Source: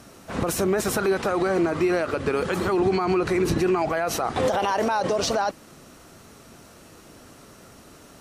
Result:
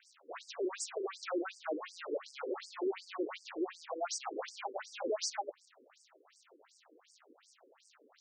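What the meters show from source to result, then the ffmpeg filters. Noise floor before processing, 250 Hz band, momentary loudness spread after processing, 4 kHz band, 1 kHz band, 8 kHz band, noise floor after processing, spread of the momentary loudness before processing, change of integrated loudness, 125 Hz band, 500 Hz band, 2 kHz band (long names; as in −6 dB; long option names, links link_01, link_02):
−49 dBFS, −18.0 dB, 6 LU, −11.5 dB, −17.0 dB, −10.5 dB, −69 dBFS, 3 LU, −16.0 dB, below −40 dB, −16.0 dB, −17.0 dB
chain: -af "aeval=exprs='sgn(val(0))*max(abs(val(0))-0.00316,0)':channel_layout=same,aeval=exprs='(tanh(22.4*val(0)+0.2)-tanh(0.2))/22.4':channel_layout=same,afftfilt=real='re*between(b*sr/1024,360*pow(6600/360,0.5+0.5*sin(2*PI*2.7*pts/sr))/1.41,360*pow(6600/360,0.5+0.5*sin(2*PI*2.7*pts/sr))*1.41)':imag='im*between(b*sr/1024,360*pow(6600/360,0.5+0.5*sin(2*PI*2.7*pts/sr))/1.41,360*pow(6600/360,0.5+0.5*sin(2*PI*2.7*pts/sr))*1.41)':win_size=1024:overlap=0.75,volume=-1.5dB"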